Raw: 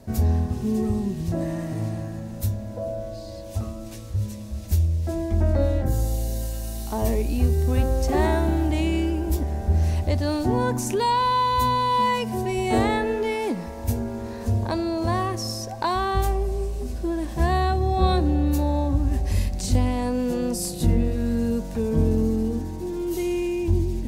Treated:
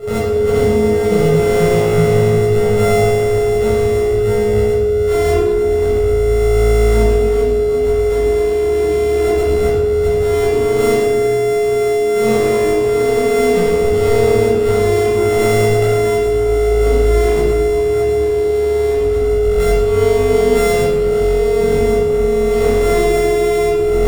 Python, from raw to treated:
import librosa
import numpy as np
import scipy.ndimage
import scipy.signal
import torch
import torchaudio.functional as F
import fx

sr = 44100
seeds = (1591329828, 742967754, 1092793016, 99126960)

y = np.r_[np.sort(x[:len(x) // 64 * 64].reshape(-1, 64), axis=1).ravel(), x[len(x) // 64 * 64:]]
y = fx.over_compress(y, sr, threshold_db=-29.0, ratio=-1.0)
y = y + 10.0 ** (-32.0 / 20.0) * np.sin(2.0 * np.pi * 420.0 * np.arange(len(y)) / sr)
y = fx.peak_eq(y, sr, hz=440.0, db=11.5, octaves=0.27)
y = fx.doubler(y, sr, ms=19.0, db=-12.0)
y = fx.room_shoebox(y, sr, seeds[0], volume_m3=940.0, walls='mixed', distance_m=6.5)
y = F.gain(torch.from_numpy(y), -5.0).numpy()